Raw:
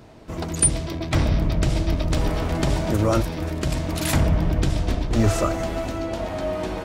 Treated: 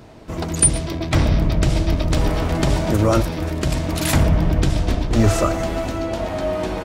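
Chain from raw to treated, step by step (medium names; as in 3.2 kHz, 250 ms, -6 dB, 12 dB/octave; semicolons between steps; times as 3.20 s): delay 114 ms -22 dB; trim +3.5 dB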